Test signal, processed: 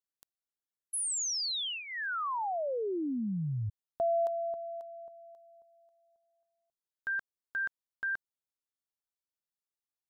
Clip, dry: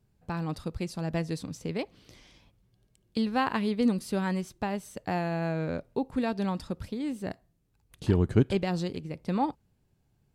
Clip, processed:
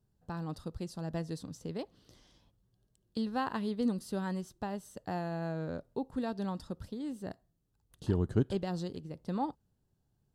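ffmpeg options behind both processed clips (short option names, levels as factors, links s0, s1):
-af "equalizer=f=2300:t=o:w=0.38:g=-13,volume=0.501"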